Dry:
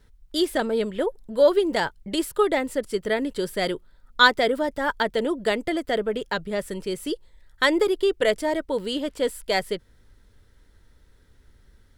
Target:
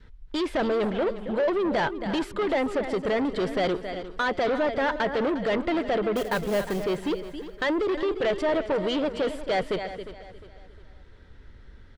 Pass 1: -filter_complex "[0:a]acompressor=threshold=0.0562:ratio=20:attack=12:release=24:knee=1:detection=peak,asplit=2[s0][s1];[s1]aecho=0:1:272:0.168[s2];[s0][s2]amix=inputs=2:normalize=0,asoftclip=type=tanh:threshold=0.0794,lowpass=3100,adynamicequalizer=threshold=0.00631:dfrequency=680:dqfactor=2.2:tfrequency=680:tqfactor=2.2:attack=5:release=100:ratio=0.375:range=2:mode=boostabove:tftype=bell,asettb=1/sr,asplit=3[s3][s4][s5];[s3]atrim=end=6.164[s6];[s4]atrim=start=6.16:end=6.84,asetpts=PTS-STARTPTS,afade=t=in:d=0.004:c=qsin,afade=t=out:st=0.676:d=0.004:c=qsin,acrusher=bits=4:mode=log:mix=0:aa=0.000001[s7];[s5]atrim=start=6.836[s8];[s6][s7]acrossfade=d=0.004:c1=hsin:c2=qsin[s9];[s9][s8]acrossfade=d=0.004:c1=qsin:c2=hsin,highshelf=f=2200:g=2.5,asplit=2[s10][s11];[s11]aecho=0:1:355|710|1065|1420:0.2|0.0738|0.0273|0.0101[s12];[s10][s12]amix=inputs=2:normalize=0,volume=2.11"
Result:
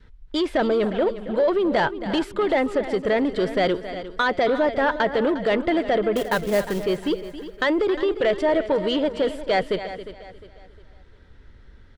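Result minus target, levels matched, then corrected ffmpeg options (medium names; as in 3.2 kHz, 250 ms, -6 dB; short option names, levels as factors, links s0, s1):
saturation: distortion -7 dB
-filter_complex "[0:a]acompressor=threshold=0.0562:ratio=20:attack=12:release=24:knee=1:detection=peak,asplit=2[s0][s1];[s1]aecho=0:1:272:0.168[s2];[s0][s2]amix=inputs=2:normalize=0,asoftclip=type=tanh:threshold=0.0335,lowpass=3100,adynamicequalizer=threshold=0.00631:dfrequency=680:dqfactor=2.2:tfrequency=680:tqfactor=2.2:attack=5:release=100:ratio=0.375:range=2:mode=boostabove:tftype=bell,asettb=1/sr,asplit=3[s3][s4][s5];[s3]atrim=end=6.164[s6];[s4]atrim=start=6.16:end=6.84,asetpts=PTS-STARTPTS,afade=t=in:d=0.004:c=qsin,afade=t=out:st=0.676:d=0.004:c=qsin,acrusher=bits=4:mode=log:mix=0:aa=0.000001[s7];[s5]atrim=start=6.836[s8];[s6][s7]acrossfade=d=0.004:c1=hsin:c2=qsin[s9];[s9][s8]acrossfade=d=0.004:c1=qsin:c2=hsin,highshelf=f=2200:g=2.5,asplit=2[s10][s11];[s11]aecho=0:1:355|710|1065|1420:0.2|0.0738|0.0273|0.0101[s12];[s10][s12]amix=inputs=2:normalize=0,volume=2.11"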